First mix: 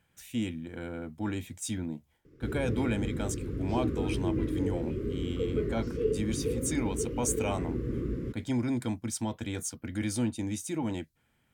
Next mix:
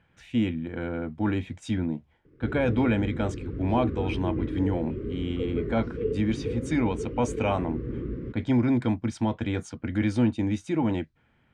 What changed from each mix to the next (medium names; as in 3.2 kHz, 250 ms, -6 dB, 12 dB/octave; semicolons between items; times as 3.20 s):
speech +7.0 dB; master: add low-pass 2.7 kHz 12 dB/octave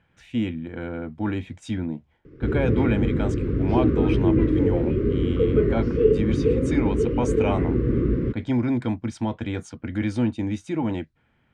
background +11.0 dB